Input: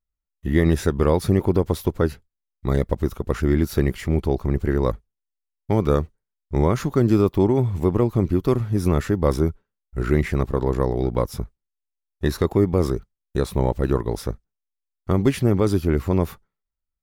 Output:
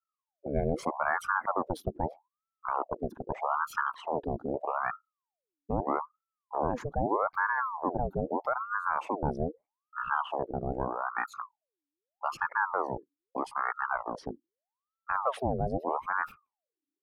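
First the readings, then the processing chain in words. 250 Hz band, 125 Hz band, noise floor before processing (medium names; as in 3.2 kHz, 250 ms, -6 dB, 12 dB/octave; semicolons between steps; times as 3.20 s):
-17.0 dB, -19.5 dB, -83 dBFS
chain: resonances exaggerated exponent 2; level-controlled noise filter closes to 810 Hz, open at -17.5 dBFS; ring modulator with a swept carrier 810 Hz, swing 65%, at 0.8 Hz; trim -8.5 dB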